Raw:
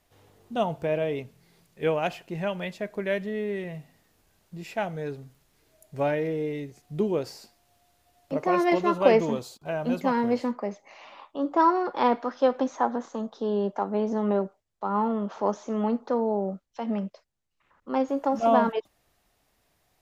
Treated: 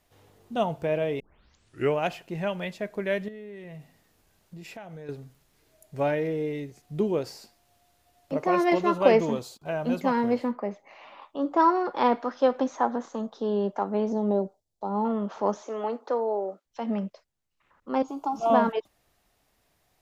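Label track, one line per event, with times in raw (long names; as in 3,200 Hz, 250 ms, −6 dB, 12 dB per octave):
1.200000	1.200000	tape start 0.76 s
3.280000	5.090000	downward compressor, threshold −39 dBFS
10.350000	11.220000	parametric band 6,100 Hz −9.5 dB 1.1 octaves
14.120000	15.050000	flat-topped bell 1,800 Hz −13 dB
15.620000	16.650000	high-pass filter 320 Hz 24 dB per octave
18.020000	18.500000	phaser with its sweep stopped centre 360 Hz, stages 8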